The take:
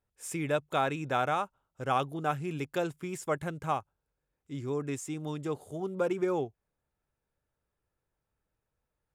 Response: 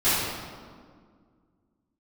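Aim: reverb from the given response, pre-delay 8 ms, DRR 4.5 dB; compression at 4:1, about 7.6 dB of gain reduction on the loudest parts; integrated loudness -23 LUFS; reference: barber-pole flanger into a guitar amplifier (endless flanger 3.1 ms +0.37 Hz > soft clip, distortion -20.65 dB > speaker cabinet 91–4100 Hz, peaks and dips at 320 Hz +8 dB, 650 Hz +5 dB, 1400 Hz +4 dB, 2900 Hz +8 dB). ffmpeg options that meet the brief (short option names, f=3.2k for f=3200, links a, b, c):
-filter_complex "[0:a]acompressor=threshold=-33dB:ratio=4,asplit=2[a][b];[1:a]atrim=start_sample=2205,adelay=8[c];[b][c]afir=irnorm=-1:irlink=0,volume=-21.5dB[d];[a][d]amix=inputs=2:normalize=0,asplit=2[e][f];[f]adelay=3.1,afreqshift=0.37[g];[e][g]amix=inputs=2:normalize=1,asoftclip=threshold=-29dB,highpass=91,equalizer=f=320:t=q:w=4:g=8,equalizer=f=650:t=q:w=4:g=5,equalizer=f=1.4k:t=q:w=4:g=4,equalizer=f=2.9k:t=q:w=4:g=8,lowpass=f=4.1k:w=0.5412,lowpass=f=4.1k:w=1.3066,volume=14dB"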